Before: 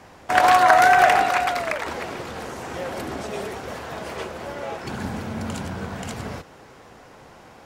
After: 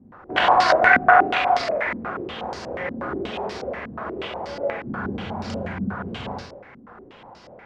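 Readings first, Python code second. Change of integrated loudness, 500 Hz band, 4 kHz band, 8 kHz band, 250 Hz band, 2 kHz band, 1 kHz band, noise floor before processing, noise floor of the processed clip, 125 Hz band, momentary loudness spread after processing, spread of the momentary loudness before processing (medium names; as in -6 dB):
-1.0 dB, +1.0 dB, +1.0 dB, -10.5 dB, +2.0 dB, +1.5 dB, -1.5 dB, -48 dBFS, -47 dBFS, -1.0 dB, 17 LU, 19 LU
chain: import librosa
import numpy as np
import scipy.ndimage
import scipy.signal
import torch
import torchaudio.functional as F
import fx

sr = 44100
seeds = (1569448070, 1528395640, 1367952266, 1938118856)

y = fx.rev_schroeder(x, sr, rt60_s=0.53, comb_ms=31, drr_db=-0.5)
y = fx.filter_held_lowpass(y, sr, hz=8.3, low_hz=240.0, high_hz=4900.0)
y = y * librosa.db_to_amplitude(-5.0)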